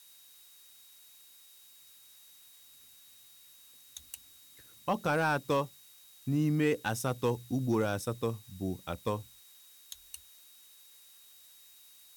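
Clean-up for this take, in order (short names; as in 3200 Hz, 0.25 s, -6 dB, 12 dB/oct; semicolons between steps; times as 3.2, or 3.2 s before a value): clip repair -20 dBFS; notch 3800 Hz, Q 30; noise print and reduce 20 dB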